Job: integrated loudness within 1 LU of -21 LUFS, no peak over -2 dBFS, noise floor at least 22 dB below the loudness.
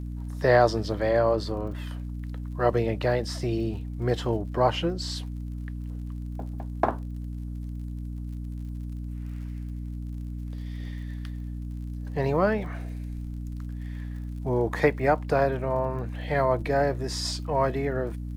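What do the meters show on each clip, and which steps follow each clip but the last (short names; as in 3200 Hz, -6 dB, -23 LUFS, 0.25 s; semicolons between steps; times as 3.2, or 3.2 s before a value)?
ticks 51/s; hum 60 Hz; harmonics up to 300 Hz; hum level -32 dBFS; loudness -28.5 LUFS; peak -7.5 dBFS; loudness target -21.0 LUFS
-> de-click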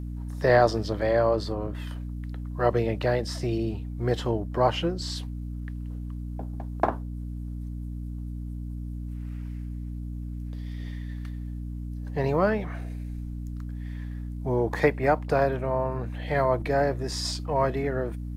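ticks 0.11/s; hum 60 Hz; harmonics up to 300 Hz; hum level -32 dBFS
-> de-hum 60 Hz, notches 5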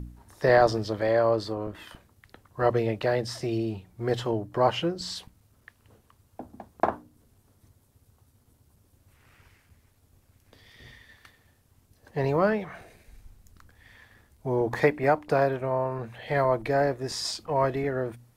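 hum none; loudness -27.0 LUFS; peak -7.0 dBFS; loudness target -21.0 LUFS
-> gain +6 dB; limiter -2 dBFS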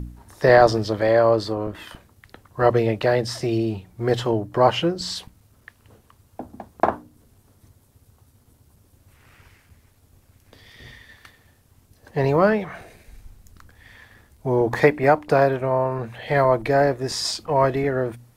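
loudness -21.0 LUFS; peak -2.0 dBFS; noise floor -59 dBFS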